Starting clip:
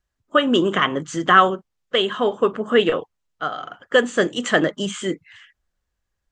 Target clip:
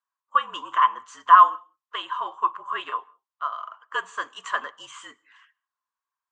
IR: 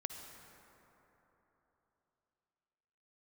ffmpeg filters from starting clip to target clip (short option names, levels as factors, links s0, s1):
-filter_complex "[0:a]highpass=f=1100:t=q:w=11,afreqshift=-57,asplit=2[s0][s1];[1:a]atrim=start_sample=2205,afade=t=out:st=0.24:d=0.01,atrim=end_sample=11025,adelay=9[s2];[s1][s2]afir=irnorm=-1:irlink=0,volume=0.158[s3];[s0][s3]amix=inputs=2:normalize=0,volume=0.224"